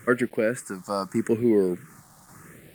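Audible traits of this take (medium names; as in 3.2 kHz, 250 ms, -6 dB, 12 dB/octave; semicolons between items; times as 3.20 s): random-step tremolo; a quantiser's noise floor 10-bit, dither none; phasing stages 4, 0.81 Hz, lowest notch 410–1100 Hz; Opus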